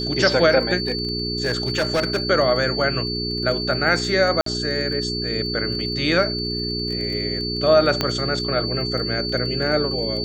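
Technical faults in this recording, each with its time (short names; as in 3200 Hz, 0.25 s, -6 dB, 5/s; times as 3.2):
crackle 18/s -28 dBFS
hum 60 Hz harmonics 7 -28 dBFS
tone 4500 Hz -26 dBFS
0.77–2.3 clipped -16 dBFS
4.41–4.46 gap 53 ms
8.01 pop -5 dBFS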